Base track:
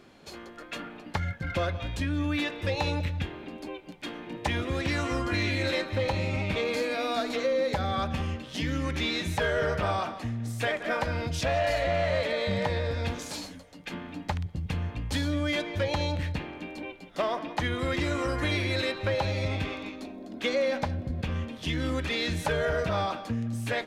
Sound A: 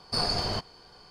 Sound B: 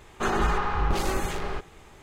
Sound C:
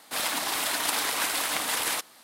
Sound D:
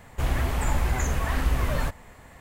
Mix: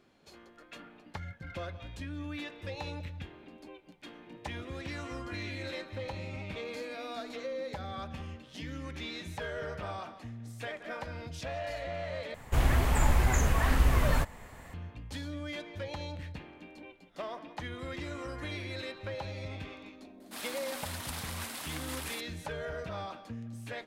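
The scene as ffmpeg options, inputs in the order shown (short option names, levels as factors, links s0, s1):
-filter_complex "[0:a]volume=0.282,asplit=2[s0][s1];[s0]atrim=end=12.344[s2];[4:a]atrim=end=2.4,asetpts=PTS-STARTPTS,volume=0.944[s3];[s1]atrim=start=14.736[s4];[3:a]atrim=end=2.23,asetpts=PTS-STARTPTS,volume=0.211,afade=t=in:d=0.004:c=hsin,afade=t=out:st=2.226:d=0.004:c=hsin,adelay=890820S[s5];[s2][s3]acrossfade=d=0.004:c1=hsin:c2=hsin[s6];[s6][s4]acrossfade=d=0.004:c1=hsin:c2=hsin[s7];[s7][s5]amix=inputs=2:normalize=0"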